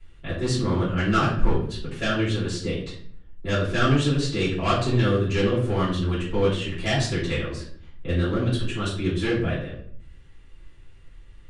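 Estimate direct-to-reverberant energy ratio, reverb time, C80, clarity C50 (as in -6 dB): -11.0 dB, 0.55 s, 8.5 dB, 5.0 dB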